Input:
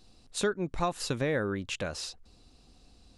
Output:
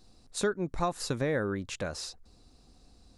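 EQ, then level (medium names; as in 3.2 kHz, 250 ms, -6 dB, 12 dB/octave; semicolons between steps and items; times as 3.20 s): peaking EQ 2.9 kHz -7 dB 0.65 oct; 0.0 dB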